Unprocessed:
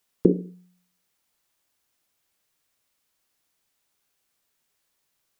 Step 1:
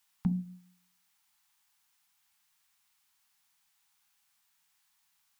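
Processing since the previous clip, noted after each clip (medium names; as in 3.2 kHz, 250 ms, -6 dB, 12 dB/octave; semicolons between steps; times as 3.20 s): elliptic band-stop 210–800 Hz, stop band 40 dB; tone controls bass -8 dB, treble -1 dB; de-hum 61.98 Hz, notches 10; trim +2.5 dB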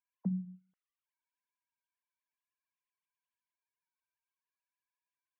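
formants replaced by sine waves; trim -3.5 dB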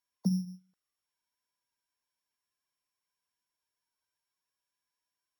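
sorted samples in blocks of 8 samples; trim +5 dB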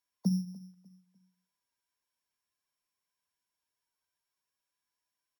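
feedback delay 298 ms, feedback 31%, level -19.5 dB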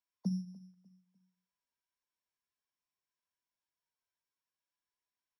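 distance through air 59 m; trim -5.5 dB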